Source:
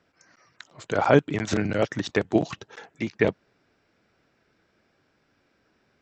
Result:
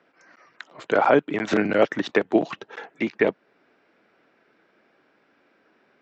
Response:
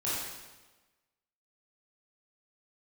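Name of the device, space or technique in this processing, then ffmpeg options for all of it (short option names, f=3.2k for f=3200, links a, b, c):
DJ mixer with the lows and highs turned down: -filter_complex "[0:a]acrossover=split=200 3500:gain=0.0708 1 0.178[a][b][c];[a][b][c]amix=inputs=3:normalize=0,alimiter=limit=-12.5dB:level=0:latency=1:release=414,volume=6.5dB"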